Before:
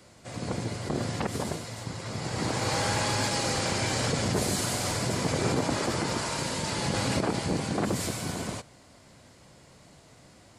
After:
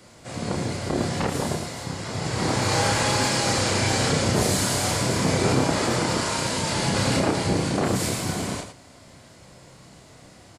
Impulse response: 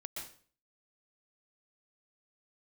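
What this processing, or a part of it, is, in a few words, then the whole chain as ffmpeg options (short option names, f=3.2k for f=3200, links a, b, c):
slapback doubling: -filter_complex "[0:a]asplit=3[a][b][c];[b]adelay=31,volume=-3dB[d];[c]adelay=110,volume=-8dB[e];[a][d][e]amix=inputs=3:normalize=0,volume=3.5dB"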